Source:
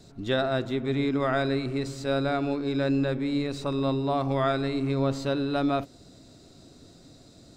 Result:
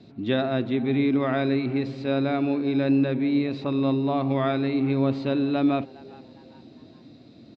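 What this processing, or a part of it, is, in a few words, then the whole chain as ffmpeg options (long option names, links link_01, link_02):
frequency-shifting delay pedal into a guitar cabinet: -filter_complex "[0:a]asplit=4[link_01][link_02][link_03][link_04];[link_02]adelay=408,afreqshift=120,volume=-22dB[link_05];[link_03]adelay=816,afreqshift=240,volume=-29.5dB[link_06];[link_04]adelay=1224,afreqshift=360,volume=-37.1dB[link_07];[link_01][link_05][link_06][link_07]amix=inputs=4:normalize=0,highpass=100,equalizer=frequency=120:width_type=q:width=4:gain=4,equalizer=frequency=230:width_type=q:width=4:gain=9,equalizer=frequency=320:width_type=q:width=4:gain=5,equalizer=frequency=1400:width_type=q:width=4:gain=-4,equalizer=frequency=2400:width_type=q:width=4:gain=5,lowpass=frequency=4100:width=0.5412,lowpass=frequency=4100:width=1.3066"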